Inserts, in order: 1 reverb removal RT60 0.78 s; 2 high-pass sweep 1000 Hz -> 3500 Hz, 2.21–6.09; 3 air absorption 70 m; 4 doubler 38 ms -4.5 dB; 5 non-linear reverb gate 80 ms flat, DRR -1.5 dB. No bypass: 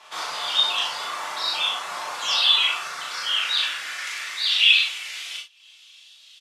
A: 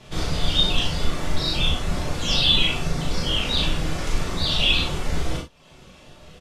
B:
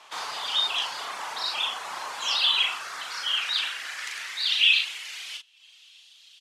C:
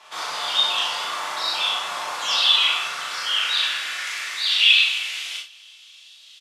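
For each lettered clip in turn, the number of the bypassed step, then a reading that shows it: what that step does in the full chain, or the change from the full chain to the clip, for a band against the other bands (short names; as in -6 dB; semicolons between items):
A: 2, 500 Hz band +13.0 dB; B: 5, loudness change -4.0 LU; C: 1, momentary loudness spread change -2 LU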